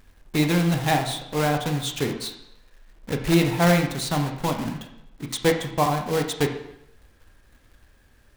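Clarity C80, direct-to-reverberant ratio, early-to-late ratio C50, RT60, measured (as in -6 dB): 10.0 dB, 4.0 dB, 7.5 dB, 0.80 s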